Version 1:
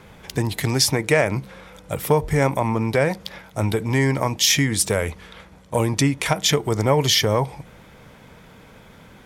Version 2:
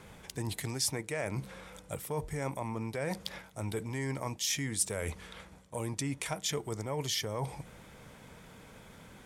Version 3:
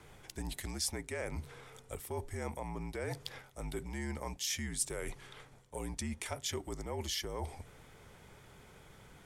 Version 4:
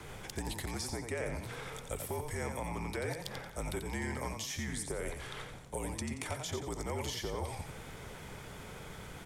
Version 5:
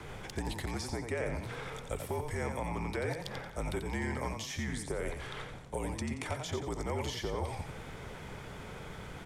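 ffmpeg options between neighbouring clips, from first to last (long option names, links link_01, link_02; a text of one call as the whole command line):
ffmpeg -i in.wav -af "areverse,acompressor=threshold=-26dB:ratio=6,areverse,equalizer=frequency=8600:width_type=o:width=0.9:gain=7.5,volume=-6.5dB" out.wav
ffmpeg -i in.wav -af "afreqshift=-55,volume=-4dB" out.wav
ffmpeg -i in.wav -filter_complex "[0:a]acrossover=split=510|1300[link_01][link_02][link_03];[link_01]acompressor=threshold=-48dB:ratio=4[link_04];[link_02]acompressor=threshold=-54dB:ratio=4[link_05];[link_03]acompressor=threshold=-52dB:ratio=4[link_06];[link_04][link_05][link_06]amix=inputs=3:normalize=0,asplit=5[link_07][link_08][link_09][link_10][link_11];[link_08]adelay=89,afreqshift=39,volume=-6.5dB[link_12];[link_09]adelay=178,afreqshift=78,volume=-15.6dB[link_13];[link_10]adelay=267,afreqshift=117,volume=-24.7dB[link_14];[link_11]adelay=356,afreqshift=156,volume=-33.9dB[link_15];[link_07][link_12][link_13][link_14][link_15]amix=inputs=5:normalize=0,volume=9dB" out.wav
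ffmpeg -i in.wav -af "lowpass=frequency=4000:poles=1,volume=2.5dB" out.wav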